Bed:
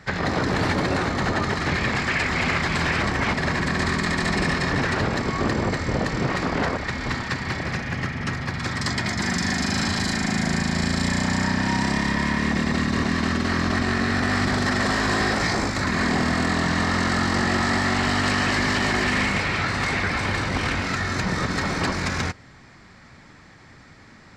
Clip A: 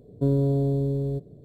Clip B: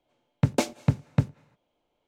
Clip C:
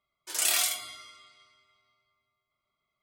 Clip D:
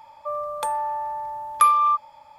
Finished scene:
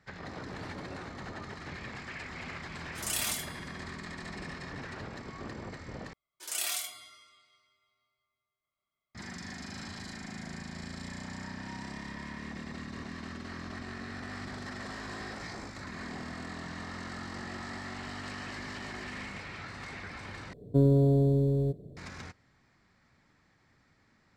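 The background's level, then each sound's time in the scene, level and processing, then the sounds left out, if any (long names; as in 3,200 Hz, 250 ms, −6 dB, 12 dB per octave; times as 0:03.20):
bed −19 dB
0:02.68: mix in C −7.5 dB + comb filter 3.3 ms, depth 36%
0:06.13: overwrite with C −7.5 dB
0:20.53: overwrite with A −0.5 dB
not used: B, D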